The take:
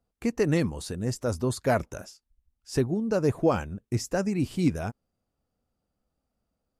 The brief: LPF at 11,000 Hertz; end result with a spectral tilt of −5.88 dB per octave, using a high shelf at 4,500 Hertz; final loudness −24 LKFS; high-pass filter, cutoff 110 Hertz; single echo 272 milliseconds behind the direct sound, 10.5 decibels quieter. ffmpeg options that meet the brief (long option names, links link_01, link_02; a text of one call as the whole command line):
ffmpeg -i in.wav -af "highpass=110,lowpass=11000,highshelf=frequency=4500:gain=-7.5,aecho=1:1:272:0.299,volume=4.5dB" out.wav